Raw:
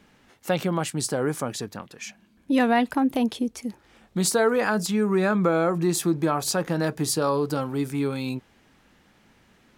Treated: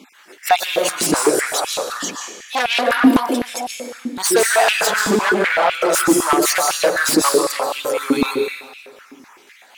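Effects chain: random spectral dropouts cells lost 38%; high shelf 2200 Hz +9 dB; plate-style reverb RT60 1.6 s, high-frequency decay 0.65×, pre-delay 0.115 s, DRR 2.5 dB; in parallel at -5 dB: sine folder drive 16 dB, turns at -3 dBFS; on the sum: stepped high-pass 7.9 Hz 270–2700 Hz; gain -8.5 dB

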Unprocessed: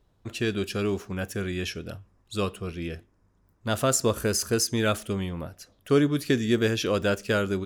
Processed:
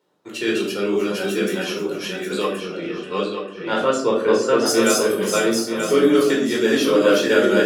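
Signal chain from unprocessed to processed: regenerating reverse delay 0.466 s, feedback 54%, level -0.5 dB; HPF 230 Hz 24 dB/oct; reverb removal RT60 0.52 s; 2.59–4.65 LPF 5400 Hz -> 2800 Hz 12 dB/oct; shoebox room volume 720 m³, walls furnished, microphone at 4.5 m

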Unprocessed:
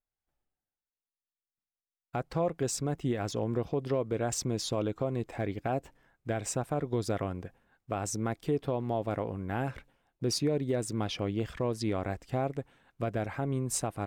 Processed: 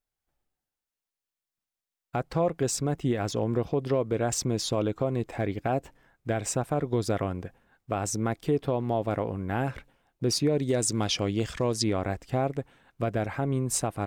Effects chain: 10.58–11.84 bell 6600 Hz +10.5 dB 1.6 oct; gain +4 dB

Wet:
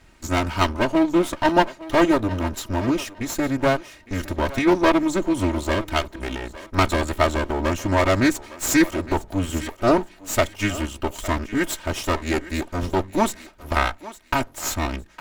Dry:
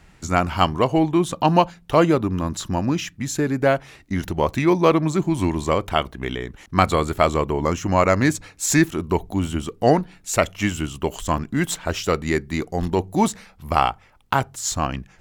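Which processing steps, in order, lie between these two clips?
minimum comb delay 3.2 ms; thinning echo 0.859 s, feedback 24%, level -15 dB

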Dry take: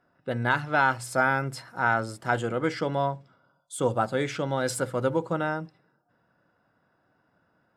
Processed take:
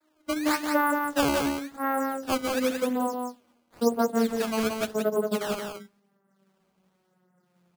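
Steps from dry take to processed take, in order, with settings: vocoder on a gliding note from D#4, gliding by -10 st; decimation with a swept rate 14×, swing 160% 0.93 Hz; echo 0.175 s -4.5 dB

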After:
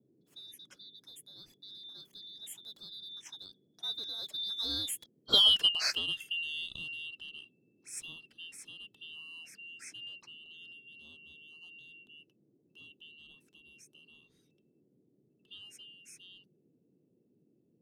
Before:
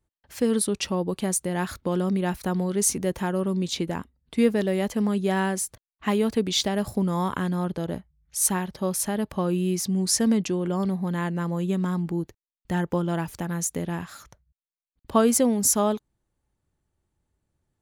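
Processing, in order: four-band scrambler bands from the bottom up 2413; Doppler pass-by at 5.39, 43 m/s, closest 9.4 m; band noise 120–410 Hz -71 dBFS

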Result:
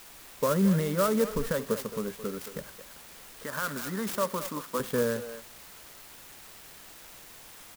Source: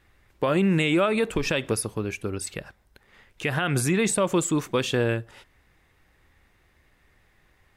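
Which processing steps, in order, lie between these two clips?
high shelf 4500 Hz -10 dB; fixed phaser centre 500 Hz, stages 8; in parallel at -8 dB: requantised 6-bit, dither triangular; 3.44–4.8 on the sum: speaker cabinet 300–9900 Hz, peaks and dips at 450 Hz -10 dB, 2500 Hz -8 dB, 5400 Hz +9 dB; speakerphone echo 0.22 s, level -10 dB; clock jitter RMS 0.057 ms; gain -3.5 dB

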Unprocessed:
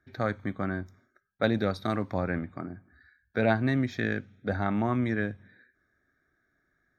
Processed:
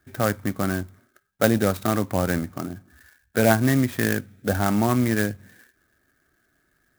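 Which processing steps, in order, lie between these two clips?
clock jitter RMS 0.053 ms; gain +6.5 dB

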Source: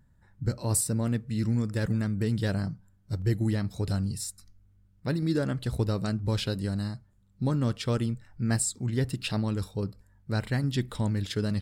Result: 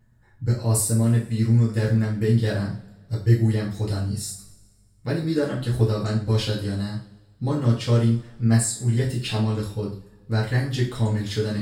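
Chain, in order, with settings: two-slope reverb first 0.39 s, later 1.5 s, from -20 dB, DRR -6.5 dB; gain -2.5 dB

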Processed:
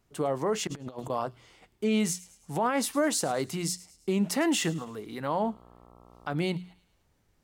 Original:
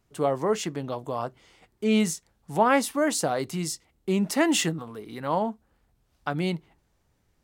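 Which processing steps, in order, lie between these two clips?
notches 60/120/180 Hz; limiter -18.5 dBFS, peak gain reduction 10.5 dB; on a send: thin delay 0.107 s, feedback 47%, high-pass 2600 Hz, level -18.5 dB; 0.67–1.1 on the sum: negative-ratio compressor -38 dBFS, ratio -0.5; 5.42–6.36 buzz 60 Hz, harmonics 22, -55 dBFS -2 dB/oct

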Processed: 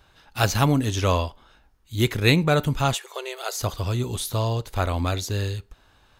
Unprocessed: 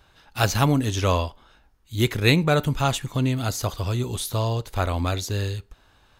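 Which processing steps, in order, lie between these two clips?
2.94–3.61 brick-wall FIR high-pass 360 Hz

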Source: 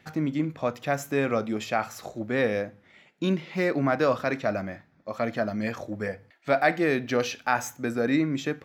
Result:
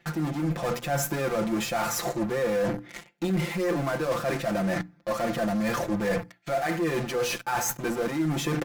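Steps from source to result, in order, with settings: in parallel at -10 dB: fuzz box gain 44 dB, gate -49 dBFS; on the sum: comb 5.8 ms, depth 92%; AGC; notches 60/120/180/240/300 Hz; reverse; compressor 5:1, threshold -26 dBFS, peak gain reduction 18 dB; reverse; dynamic EQ 3300 Hz, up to -5 dB, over -45 dBFS, Q 0.81

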